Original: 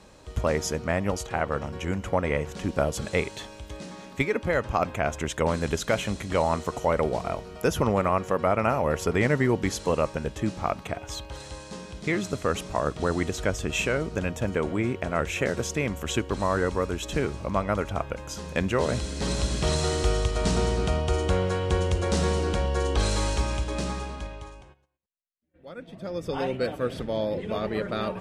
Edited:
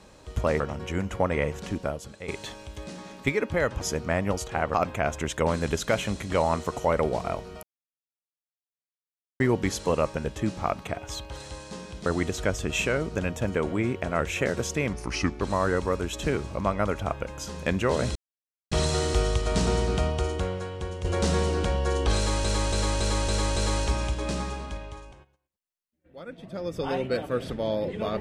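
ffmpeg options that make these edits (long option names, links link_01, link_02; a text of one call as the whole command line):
ffmpeg -i in.wav -filter_complex "[0:a]asplit=18[link_01][link_02][link_03][link_04][link_05][link_06][link_07][link_08][link_09][link_10][link_11][link_12][link_13][link_14][link_15][link_16][link_17][link_18];[link_01]atrim=end=0.602[link_19];[link_02]atrim=start=1.528:end=3.21,asetpts=PTS-STARTPTS,afade=type=out:start_time=1.062:duration=0.62:curve=qua:silence=0.188365[link_20];[link_03]atrim=start=3.21:end=4.742,asetpts=PTS-STARTPTS,afade=type=in:duration=0.004:curve=hsin:silence=0.188365[link_21];[link_04]atrim=start=0.598:end=1.532[link_22];[link_05]atrim=start=4.738:end=7.63,asetpts=PTS-STARTPTS,afade=type=out:start_time=2.888:duration=0.004:curve=hsin[link_23];[link_06]atrim=start=7.63:end=9.4,asetpts=PTS-STARTPTS,volume=0[link_24];[link_07]atrim=start=9.4:end=12.062,asetpts=PTS-STARTPTS,afade=type=in:duration=0.004:curve=hsin[link_25];[link_08]atrim=start=13.058:end=15.934[link_26];[link_09]atrim=start=15.93:end=16.3,asetpts=PTS-STARTPTS,asetrate=34398,aresample=44100,atrim=end_sample=20919,asetpts=PTS-STARTPTS[link_27];[link_10]atrim=start=16.296:end=19.05,asetpts=PTS-STARTPTS,afade=type=out:start_time=2.75:duration=0.004:curve=hsin[link_28];[link_11]atrim=start=19.05:end=19.61,asetpts=PTS-STARTPTS,volume=0[link_29];[link_12]atrim=start=19.61:end=21.94,asetpts=PTS-STARTPTS,afade=type=in:duration=0.004:curve=hsin,afade=type=out:start_time=1.33:duration=1:curve=qua:silence=0.316228[link_30];[link_13]atrim=start=21.94:end=23.342,asetpts=PTS-STARTPTS,afade=type=in:duration=0.004:curve=hsin:silence=0.316228[link_31];[link_14]atrim=start=23.058:end=23.342[link_32];[link_15]atrim=start=23.058:end=23.342[link_33];[link_16]atrim=start=23.058:end=23.342[link_34];[link_17]atrim=start=23.058:end=23.342[link_35];[link_18]atrim=start=23.058[link_36];[link_20][link_21]concat=n=2:v=0:a=1[link_37];[link_19][link_37]acrossfade=duration=0.004:curve1=hsin:curve2=hsin[link_38];[link_38][link_22]acrossfade=duration=0.004:curve1=hsin:curve2=hsin[link_39];[link_23][link_24][link_25]concat=n=3:v=0:a=1[link_40];[link_39][link_40]acrossfade=duration=0.004:curve1=hsin:curve2=hsin[link_41];[link_41][link_26]acrossfade=duration=0.004:curve1=hsin:curve2=hsin[link_42];[link_42][link_27]acrossfade=duration=0.004:curve1=hsin:curve2=hsin[link_43];[link_28][link_29][link_30][link_31]concat=n=4:v=0:a=1[link_44];[link_43][link_44]acrossfade=duration=0.004:curve1=hsin:curve2=hsin[link_45];[link_45][link_32]acrossfade=duration=0.004:curve1=hsin:curve2=hsin[link_46];[link_46][link_33]acrossfade=duration=0.004:curve1=hsin:curve2=hsin[link_47];[link_47][link_34]acrossfade=duration=0.004:curve1=hsin:curve2=hsin[link_48];[link_48][link_35]acrossfade=duration=0.004:curve1=hsin:curve2=hsin[link_49];[link_49][link_36]acrossfade=duration=0.004:curve1=hsin:curve2=hsin" out.wav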